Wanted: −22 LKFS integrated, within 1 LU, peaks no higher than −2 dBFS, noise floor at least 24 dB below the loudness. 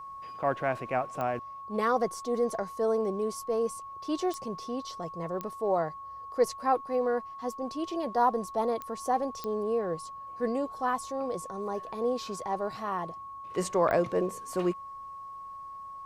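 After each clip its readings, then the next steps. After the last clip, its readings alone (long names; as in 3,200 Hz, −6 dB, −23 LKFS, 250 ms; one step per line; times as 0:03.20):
number of clicks 6; interfering tone 1,100 Hz; level of the tone −40 dBFS; integrated loudness −31.0 LKFS; sample peak −12.5 dBFS; target loudness −22.0 LKFS
→ click removal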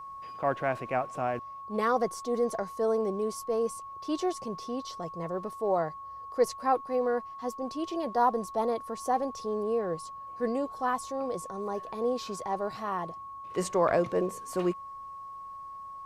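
number of clicks 0; interfering tone 1,100 Hz; level of the tone −40 dBFS
→ notch filter 1,100 Hz, Q 30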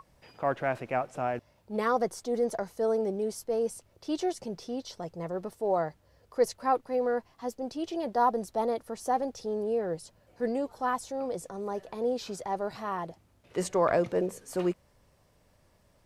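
interfering tone none found; integrated loudness −31.5 LKFS; sample peak −12.5 dBFS; target loudness −22.0 LKFS
→ level +9.5 dB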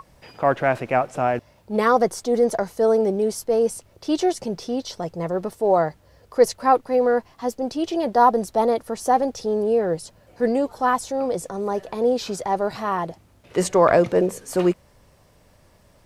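integrated loudness −22.0 LKFS; sample peak −3.0 dBFS; background noise floor −56 dBFS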